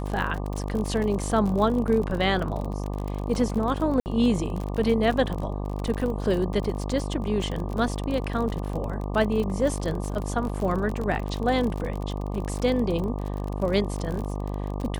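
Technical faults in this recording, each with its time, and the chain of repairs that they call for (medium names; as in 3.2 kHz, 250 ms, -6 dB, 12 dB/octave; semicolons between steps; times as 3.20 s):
buzz 50 Hz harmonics 24 -30 dBFS
crackle 44 per s -29 dBFS
4.00–4.06 s: dropout 59 ms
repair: de-click; de-hum 50 Hz, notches 24; interpolate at 4.00 s, 59 ms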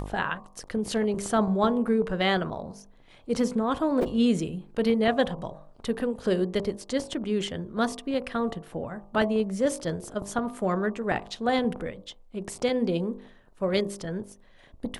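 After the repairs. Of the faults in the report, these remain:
nothing left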